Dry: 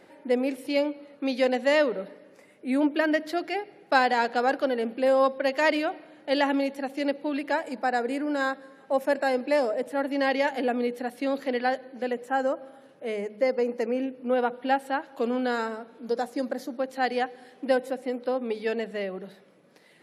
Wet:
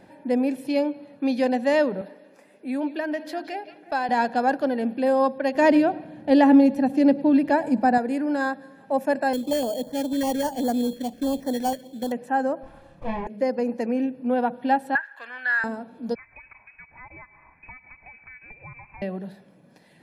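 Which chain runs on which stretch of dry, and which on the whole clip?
2.01–4.09 s: high-pass 290 Hz + compression 1.5:1, threshold -35 dBFS + repeats whose band climbs or falls 176 ms, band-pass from 3.3 kHz, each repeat -1.4 oct, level -9.5 dB
5.55–7.98 s: bass shelf 420 Hz +11.5 dB + delay 104 ms -21.5 dB
9.33–12.12 s: treble shelf 2.1 kHz -9.5 dB + sample-rate reducer 3.8 kHz + step-sequenced notch 10 Hz 810–2700 Hz
12.63–13.27 s: comb filter that takes the minimum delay 5.8 ms + low-pass that closes with the level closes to 2.2 kHz, closed at -29.5 dBFS + doubling 27 ms -4.5 dB
14.95–15.64 s: resonant high-pass 1.7 kHz, resonance Q 7.6 + treble shelf 3.7 kHz -11 dB
16.15–19.02 s: high-pass 700 Hz + compression 3:1, threshold -44 dBFS + frequency inversion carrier 2.8 kHz
whole clip: bass shelf 410 Hz +11 dB; comb 1.2 ms, depth 47%; dynamic bell 3.2 kHz, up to -3 dB, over -35 dBFS, Q 0.8; trim -1.5 dB

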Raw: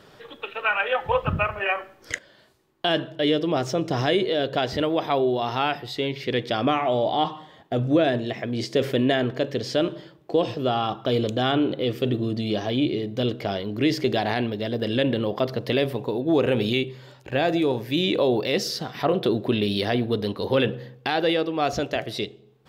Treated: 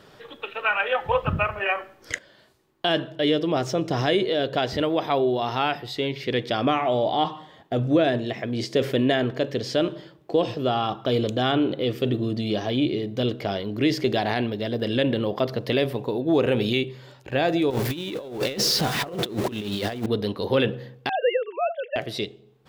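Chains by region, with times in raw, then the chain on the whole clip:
17.70–20.06 s: jump at every zero crossing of -29 dBFS + compressor with a negative ratio -26 dBFS, ratio -0.5
21.09–21.96 s: formants replaced by sine waves + steep high-pass 470 Hz
whole clip: none

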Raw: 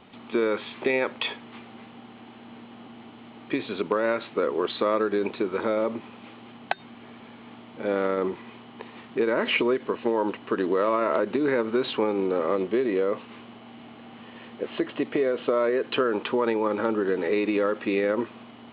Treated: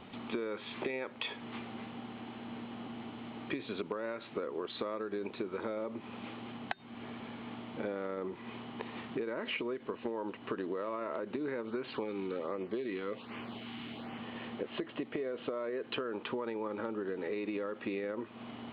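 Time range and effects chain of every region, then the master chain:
11.65–14.18 s: treble shelf 2.3 kHz +10 dB + LFO notch sine 1.3 Hz 520–4000 Hz
whole clip: bass shelf 190 Hz +3.5 dB; compression 6:1, threshold -35 dBFS

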